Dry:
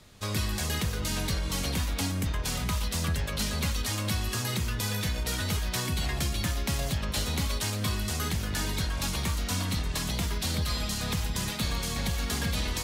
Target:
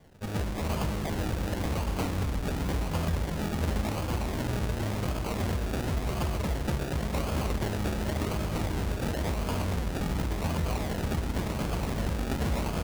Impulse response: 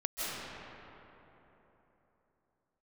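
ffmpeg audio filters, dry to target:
-filter_complex "[0:a]asplit=2[a][b];[b]adelay=13,volume=-13dB[c];[a][c]amix=inputs=2:normalize=0,asplit=2[d][e];[1:a]atrim=start_sample=2205,adelay=121[f];[e][f]afir=irnorm=-1:irlink=0,volume=-9.5dB[g];[d][g]amix=inputs=2:normalize=0,acrusher=samples=33:mix=1:aa=0.000001:lfo=1:lforange=19.8:lforate=0.92,volume=-1.5dB"

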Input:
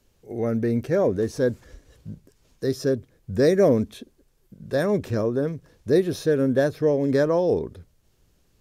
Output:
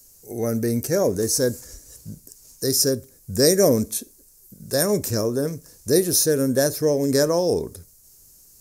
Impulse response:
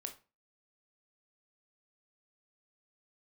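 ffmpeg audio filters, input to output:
-filter_complex "[0:a]aexciter=amount=15.3:drive=2.5:freq=5k,asplit=2[a][b];[1:a]atrim=start_sample=2205[c];[b][c]afir=irnorm=-1:irlink=0,volume=-6dB[d];[a][d]amix=inputs=2:normalize=0,volume=-2dB"

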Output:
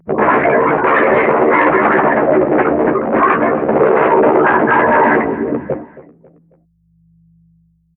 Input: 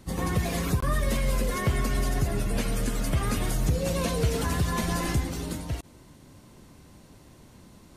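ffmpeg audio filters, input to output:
-filter_complex "[0:a]aemphasis=mode=reproduction:type=50fm,afftfilt=real='re*gte(hypot(re,im),0.0447)':imag='im*gte(hypot(re,im),0.0447)':win_size=1024:overlap=0.75,adynamicequalizer=threshold=0.00447:dfrequency=1400:dqfactor=1.7:tfrequency=1400:tqfactor=1.7:attack=5:release=100:ratio=0.375:range=2:mode=boostabove:tftype=bell,afftfilt=real='hypot(re,im)*cos(2*PI*random(0))':imag='hypot(re,im)*sin(2*PI*random(1))':win_size=512:overlap=0.75,aeval=exprs='val(0)+0.00282*(sin(2*PI*50*n/s)+sin(2*PI*2*50*n/s)/2+sin(2*PI*3*50*n/s)/3+sin(2*PI*4*50*n/s)/4+sin(2*PI*5*50*n/s)/5)':c=same,flanger=delay=17:depth=2.1:speed=0.48,aeval=exprs='0.0237*(abs(mod(val(0)/0.0237+3,4)-2)-1)':c=same,asplit=2[a][b];[b]adelay=13,volume=-4dB[c];[a][c]amix=inputs=2:normalize=0,aecho=1:1:272|544|816:0.112|0.0471|0.0198,highpass=f=390:t=q:w=0.5412,highpass=f=390:t=q:w=1.307,lowpass=f=2.4k:t=q:w=0.5176,lowpass=f=2.4k:t=q:w=0.7071,lowpass=f=2.4k:t=q:w=1.932,afreqshift=-84,alimiter=level_in=34dB:limit=-1dB:release=50:level=0:latency=1,volume=-1dB" -ar 44100 -c:a nellymoser

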